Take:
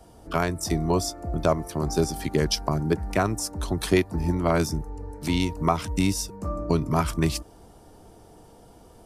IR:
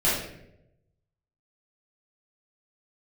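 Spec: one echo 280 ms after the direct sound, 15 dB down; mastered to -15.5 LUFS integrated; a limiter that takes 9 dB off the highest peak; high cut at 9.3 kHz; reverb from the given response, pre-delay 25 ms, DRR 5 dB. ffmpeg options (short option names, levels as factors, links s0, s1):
-filter_complex "[0:a]lowpass=9300,alimiter=limit=0.141:level=0:latency=1,aecho=1:1:280:0.178,asplit=2[s0][s1];[1:a]atrim=start_sample=2205,adelay=25[s2];[s1][s2]afir=irnorm=-1:irlink=0,volume=0.112[s3];[s0][s3]amix=inputs=2:normalize=0,volume=3.76"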